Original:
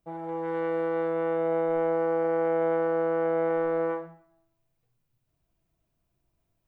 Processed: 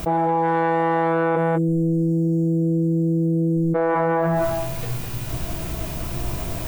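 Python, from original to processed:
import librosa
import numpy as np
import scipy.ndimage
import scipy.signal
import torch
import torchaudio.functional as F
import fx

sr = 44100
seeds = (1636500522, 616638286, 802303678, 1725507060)

y = fx.cheby2_bandstop(x, sr, low_hz=980.0, high_hz=2100.0, order=4, stop_db=80, at=(1.35, 3.74), fade=0.02)
y = fx.doubler(y, sr, ms=17.0, db=-9.0)
y = y + 10.0 ** (-6.5 / 20.0) * np.pad(y, (int(201 * sr / 1000.0), 0))[:len(y)]
y = fx.env_flatten(y, sr, amount_pct=100)
y = F.gain(torch.from_numpy(y), 7.5).numpy()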